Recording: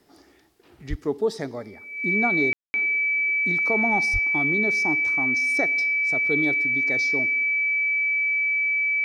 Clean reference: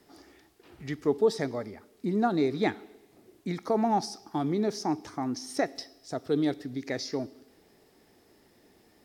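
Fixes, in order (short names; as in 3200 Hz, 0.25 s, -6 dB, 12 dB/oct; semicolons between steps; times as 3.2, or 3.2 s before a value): notch 2300 Hz, Q 30; 0.89–1.01 HPF 140 Hz 24 dB/oct; 4.12–4.24 HPF 140 Hz 24 dB/oct; room tone fill 2.53–2.74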